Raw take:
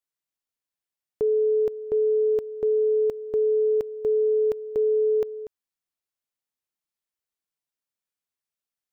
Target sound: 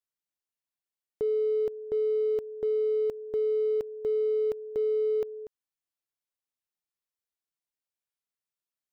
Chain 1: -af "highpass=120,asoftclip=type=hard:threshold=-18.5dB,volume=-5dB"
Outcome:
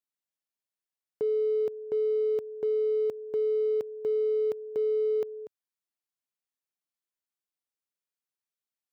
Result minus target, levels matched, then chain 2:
125 Hz band −3.5 dB
-af "asoftclip=type=hard:threshold=-18.5dB,volume=-5dB"

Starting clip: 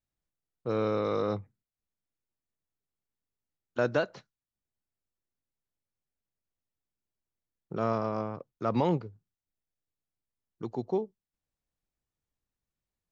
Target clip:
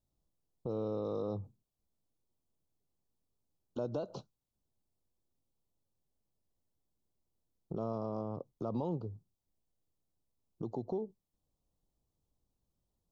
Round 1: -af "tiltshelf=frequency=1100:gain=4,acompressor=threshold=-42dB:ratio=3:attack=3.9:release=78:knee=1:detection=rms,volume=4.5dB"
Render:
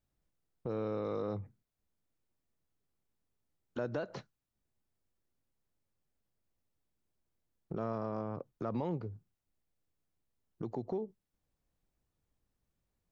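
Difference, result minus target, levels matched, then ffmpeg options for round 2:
2,000 Hz band +15.5 dB
-af "tiltshelf=frequency=1100:gain=4,acompressor=threshold=-42dB:ratio=3:attack=3.9:release=78:knee=1:detection=rms,asuperstop=centerf=1900:order=4:qfactor=0.86,volume=4.5dB"

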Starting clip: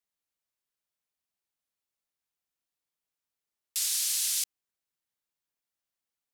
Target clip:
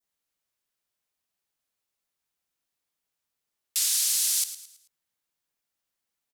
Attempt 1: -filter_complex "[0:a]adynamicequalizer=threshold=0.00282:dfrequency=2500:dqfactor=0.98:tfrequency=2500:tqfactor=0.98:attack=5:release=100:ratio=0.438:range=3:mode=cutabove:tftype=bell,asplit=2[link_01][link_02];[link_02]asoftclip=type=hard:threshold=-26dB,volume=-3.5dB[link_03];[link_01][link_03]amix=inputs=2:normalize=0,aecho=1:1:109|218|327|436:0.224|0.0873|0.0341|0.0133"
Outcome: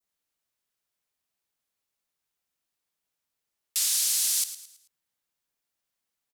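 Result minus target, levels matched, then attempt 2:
hard clipping: distortion +29 dB
-filter_complex "[0:a]adynamicequalizer=threshold=0.00282:dfrequency=2500:dqfactor=0.98:tfrequency=2500:tqfactor=0.98:attack=5:release=100:ratio=0.438:range=3:mode=cutabove:tftype=bell,asplit=2[link_01][link_02];[link_02]asoftclip=type=hard:threshold=-18.5dB,volume=-3.5dB[link_03];[link_01][link_03]amix=inputs=2:normalize=0,aecho=1:1:109|218|327|436:0.224|0.0873|0.0341|0.0133"

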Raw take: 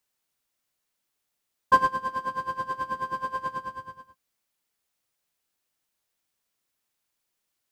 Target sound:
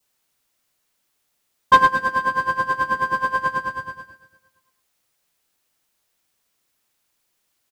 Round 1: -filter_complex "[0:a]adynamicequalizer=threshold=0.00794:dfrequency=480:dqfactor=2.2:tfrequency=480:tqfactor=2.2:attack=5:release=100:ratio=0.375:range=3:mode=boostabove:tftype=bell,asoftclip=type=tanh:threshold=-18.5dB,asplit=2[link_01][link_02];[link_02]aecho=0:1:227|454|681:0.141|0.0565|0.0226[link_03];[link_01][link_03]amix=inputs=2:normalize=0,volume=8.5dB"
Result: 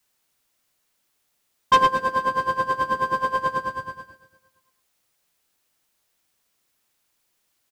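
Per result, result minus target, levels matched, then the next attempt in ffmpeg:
500 Hz band +5.0 dB; soft clipping: distortion +6 dB
-filter_complex "[0:a]adynamicequalizer=threshold=0.00794:dfrequency=1700:dqfactor=2.2:tfrequency=1700:tqfactor=2.2:attack=5:release=100:ratio=0.375:range=3:mode=boostabove:tftype=bell,asoftclip=type=tanh:threshold=-18.5dB,asplit=2[link_01][link_02];[link_02]aecho=0:1:227|454|681:0.141|0.0565|0.0226[link_03];[link_01][link_03]amix=inputs=2:normalize=0,volume=8.5dB"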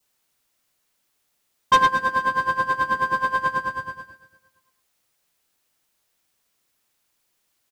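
soft clipping: distortion +6 dB
-filter_complex "[0:a]adynamicequalizer=threshold=0.00794:dfrequency=1700:dqfactor=2.2:tfrequency=1700:tqfactor=2.2:attack=5:release=100:ratio=0.375:range=3:mode=boostabove:tftype=bell,asoftclip=type=tanh:threshold=-12dB,asplit=2[link_01][link_02];[link_02]aecho=0:1:227|454|681:0.141|0.0565|0.0226[link_03];[link_01][link_03]amix=inputs=2:normalize=0,volume=8.5dB"

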